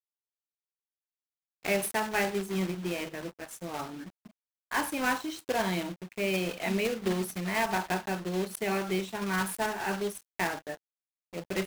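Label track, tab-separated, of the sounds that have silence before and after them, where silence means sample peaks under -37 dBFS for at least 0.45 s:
1.650000	4.030000	sound
4.720000	10.740000	sound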